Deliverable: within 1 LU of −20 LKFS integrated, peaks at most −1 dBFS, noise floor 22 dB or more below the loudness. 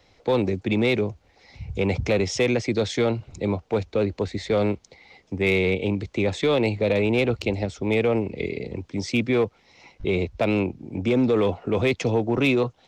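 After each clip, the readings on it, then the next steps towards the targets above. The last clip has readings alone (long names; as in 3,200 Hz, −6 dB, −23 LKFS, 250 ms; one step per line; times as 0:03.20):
share of clipped samples 0.9%; peaks flattened at −14.0 dBFS; integrated loudness −24.0 LKFS; sample peak −14.0 dBFS; target loudness −20.0 LKFS
→ clipped peaks rebuilt −14 dBFS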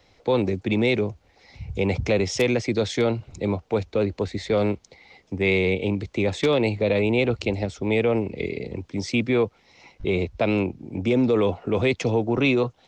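share of clipped samples 0.0%; integrated loudness −24.0 LKFS; sample peak −6.0 dBFS; target loudness −20.0 LKFS
→ level +4 dB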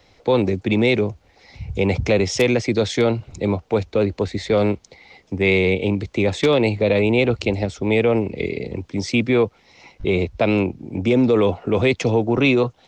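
integrated loudness −20.0 LKFS; sample peak −2.0 dBFS; background noise floor −56 dBFS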